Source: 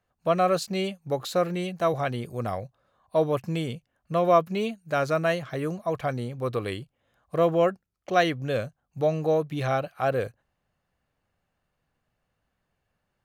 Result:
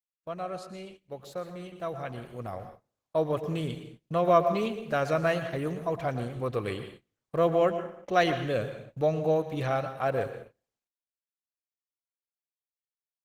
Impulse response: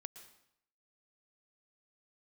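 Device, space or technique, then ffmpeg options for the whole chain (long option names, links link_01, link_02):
speakerphone in a meeting room: -filter_complex "[1:a]atrim=start_sample=2205[link_01];[0:a][link_01]afir=irnorm=-1:irlink=0,asplit=2[link_02][link_03];[link_03]adelay=90,highpass=300,lowpass=3400,asoftclip=type=hard:threshold=-23.5dB,volume=-24dB[link_04];[link_02][link_04]amix=inputs=2:normalize=0,dynaudnorm=framelen=320:gausssize=17:maxgain=14dB,agate=range=-25dB:threshold=-38dB:ratio=16:detection=peak,volume=-8dB" -ar 48000 -c:a libopus -b:a 16k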